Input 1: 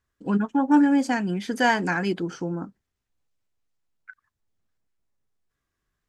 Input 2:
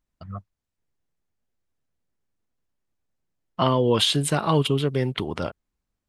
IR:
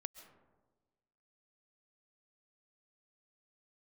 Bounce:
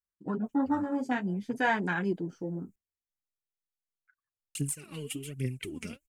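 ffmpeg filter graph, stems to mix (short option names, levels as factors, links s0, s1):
-filter_complex "[0:a]afwtdn=0.0355,highshelf=f=5900:g=9.5,flanger=delay=4.9:depth=7.8:regen=-25:speed=0.52:shape=sinusoidal,volume=0.75[s0];[1:a]firequalizer=gain_entry='entry(290,0);entry(760,-23);entry(2400,8);entry(3600,-11);entry(7000,15)':delay=0.05:min_phase=1,acompressor=threshold=0.0562:ratio=12,aphaser=in_gain=1:out_gain=1:delay=4.9:decay=0.7:speed=1.2:type=triangular,adelay=450,volume=0.335,asplit=3[s1][s2][s3];[s1]atrim=end=2.76,asetpts=PTS-STARTPTS,afade=t=out:st=2.756:d=0.004:c=hsin[s4];[s2]atrim=start=2.76:end=4.55,asetpts=PTS-STARTPTS,volume=0[s5];[s3]atrim=start=4.55,asetpts=PTS-STARTPTS,afade=t=in:d=0.004:c=hsin[s6];[s4][s5][s6]concat=n=3:v=0:a=1[s7];[s0][s7]amix=inputs=2:normalize=0"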